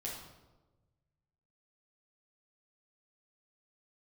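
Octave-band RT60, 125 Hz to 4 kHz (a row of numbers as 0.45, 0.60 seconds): 2.1, 1.4, 1.3, 1.0, 0.80, 0.75 seconds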